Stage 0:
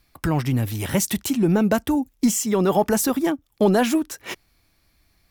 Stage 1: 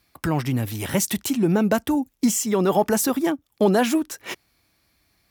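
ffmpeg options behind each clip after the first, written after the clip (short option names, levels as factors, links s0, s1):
-af "highpass=43,lowshelf=f=83:g=-8.5"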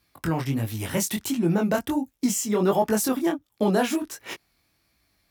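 -af "flanger=delay=17.5:depth=6.9:speed=1.4"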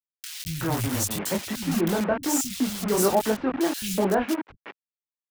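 -filter_complex "[0:a]acrusher=bits=4:mix=0:aa=0.000001,acrossover=split=170|2400[s0][s1][s2];[s0]adelay=210[s3];[s1]adelay=370[s4];[s3][s4][s2]amix=inputs=3:normalize=0"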